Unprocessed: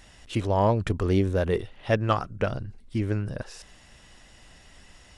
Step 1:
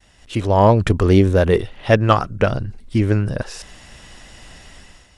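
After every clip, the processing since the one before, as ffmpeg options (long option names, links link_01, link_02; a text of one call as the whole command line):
ffmpeg -i in.wav -af "dynaudnorm=framelen=130:gausssize=7:maxgain=8.5dB,agate=range=-33dB:threshold=-48dB:ratio=3:detection=peak,volume=2dB" out.wav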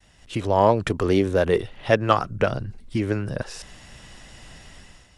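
ffmpeg -i in.wav -filter_complex "[0:a]equalizer=frequency=140:width=1.5:gain=4,acrossover=split=260|4400[link_01][link_02][link_03];[link_01]acompressor=threshold=-24dB:ratio=6[link_04];[link_04][link_02][link_03]amix=inputs=3:normalize=0,volume=-3.5dB" out.wav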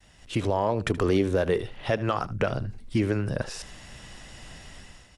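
ffmpeg -i in.wav -af "alimiter=limit=-13dB:level=0:latency=1:release=145,aecho=1:1:76:0.133" out.wav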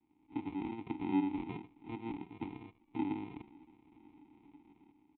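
ffmpeg -i in.wav -filter_complex "[0:a]aresample=8000,acrusher=samples=14:mix=1:aa=0.000001,aresample=44100,asplit=3[link_01][link_02][link_03];[link_01]bandpass=frequency=300:width_type=q:width=8,volume=0dB[link_04];[link_02]bandpass=frequency=870:width_type=q:width=8,volume=-6dB[link_05];[link_03]bandpass=frequency=2240:width_type=q:width=8,volume=-9dB[link_06];[link_04][link_05][link_06]amix=inputs=3:normalize=0,volume=-1.5dB" out.wav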